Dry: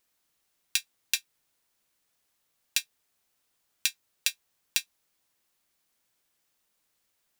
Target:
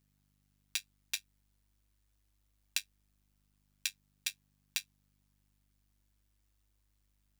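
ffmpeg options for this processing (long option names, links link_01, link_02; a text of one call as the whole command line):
ffmpeg -i in.wav -af "volume=7dB,asoftclip=hard,volume=-7dB,aeval=exprs='val(0)+0.000447*(sin(2*PI*50*n/s)+sin(2*PI*2*50*n/s)/2+sin(2*PI*3*50*n/s)/3+sin(2*PI*4*50*n/s)/4+sin(2*PI*5*50*n/s)/5)':channel_layout=same,tremolo=f=100:d=0.75,volume=-4dB" out.wav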